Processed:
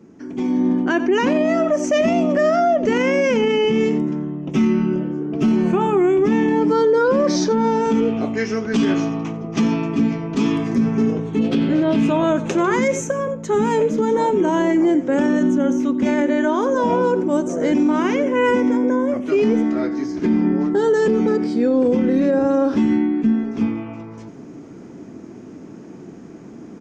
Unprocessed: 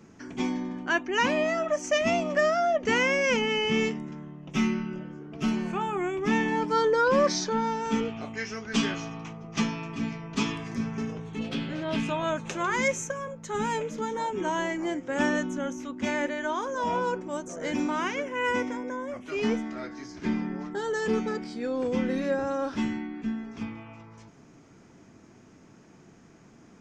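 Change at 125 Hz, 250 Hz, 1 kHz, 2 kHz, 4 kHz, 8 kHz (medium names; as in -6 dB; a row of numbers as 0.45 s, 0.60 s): +10.5 dB, +13.0 dB, +6.0 dB, +2.5 dB, +1.5 dB, +3.0 dB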